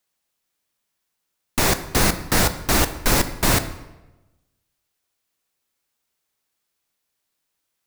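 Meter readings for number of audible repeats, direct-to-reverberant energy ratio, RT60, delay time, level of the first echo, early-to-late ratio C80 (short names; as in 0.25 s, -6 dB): none, 10.0 dB, 1.0 s, none, none, 15.0 dB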